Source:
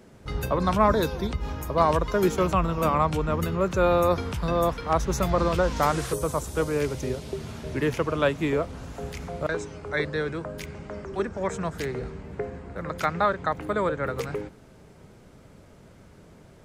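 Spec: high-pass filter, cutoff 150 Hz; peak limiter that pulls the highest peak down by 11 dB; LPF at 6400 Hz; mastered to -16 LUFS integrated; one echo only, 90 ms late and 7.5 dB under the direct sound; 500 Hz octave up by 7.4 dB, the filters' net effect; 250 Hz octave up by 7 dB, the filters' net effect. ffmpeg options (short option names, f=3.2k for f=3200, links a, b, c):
-af "highpass=150,lowpass=6.4k,equalizer=f=250:t=o:g=9,equalizer=f=500:t=o:g=6.5,alimiter=limit=-15.5dB:level=0:latency=1,aecho=1:1:90:0.422,volume=9.5dB"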